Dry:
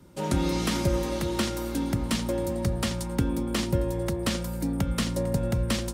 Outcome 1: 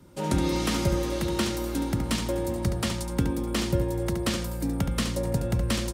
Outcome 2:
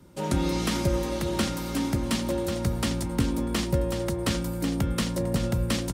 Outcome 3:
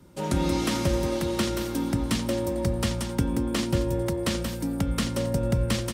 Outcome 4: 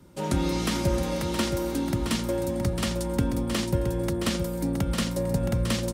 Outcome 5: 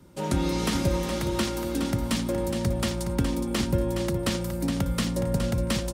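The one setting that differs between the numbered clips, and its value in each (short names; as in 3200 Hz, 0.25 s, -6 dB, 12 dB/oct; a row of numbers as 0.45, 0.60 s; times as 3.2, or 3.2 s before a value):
echo, time: 71, 1092, 180, 669, 417 ms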